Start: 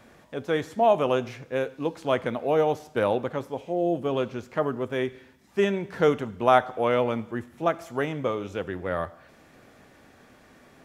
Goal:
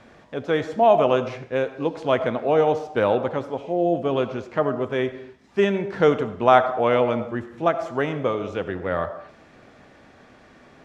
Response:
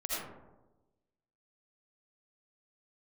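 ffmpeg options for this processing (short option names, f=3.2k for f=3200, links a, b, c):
-filter_complex "[0:a]lowpass=5.7k,asplit=2[a][b];[b]equalizer=f=760:w=0.55:g=7.5[c];[1:a]atrim=start_sample=2205,afade=t=out:st=0.31:d=0.01,atrim=end_sample=14112[d];[c][d]afir=irnorm=-1:irlink=0,volume=-19.5dB[e];[a][e]amix=inputs=2:normalize=0,volume=2.5dB"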